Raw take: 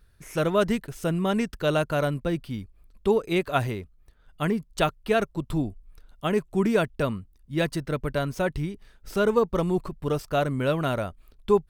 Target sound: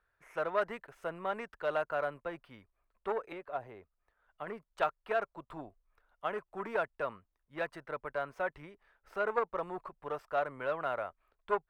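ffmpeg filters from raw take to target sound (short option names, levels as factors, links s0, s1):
-filter_complex "[0:a]aeval=exprs='0.376*(cos(1*acos(clip(val(0)/0.376,-1,1)))-cos(1*PI/2))+0.119*(cos(2*acos(clip(val(0)/0.376,-1,1)))-cos(2*PI/2))+0.0211*(cos(8*acos(clip(val(0)/0.376,-1,1)))-cos(8*PI/2))':c=same,asettb=1/sr,asplit=3[s0][s1][s2];[s0]atrim=end=3.324[s3];[s1]atrim=start=3.32:end=4.47,asetpts=PTS-STARTPTS,afade=t=in:d=0.004:c=qsin,afade=t=out:st=1.146:d=0.004:c=qsin,acrossover=split=770|5100[s4][s5][s6];[s4]acompressor=threshold=0.0501:ratio=4[s7];[s5]acompressor=threshold=0.00708:ratio=4[s8];[s6]acompressor=threshold=0.001:ratio=4[s9];[s7][s8][s9]amix=inputs=3:normalize=0[s10];[s2]atrim=start=4.466[s11];[s3][s10]acrossfade=d=0.004:c1=hsin:c2=qsin[s12];[s12][s11]acrossfade=d=0.004:c1=qsin:c2=hsin,acrossover=split=560 2100:gain=0.0708 1 0.0794[s13][s14][s15];[s13][s14][s15]amix=inputs=3:normalize=0,volume=0.708"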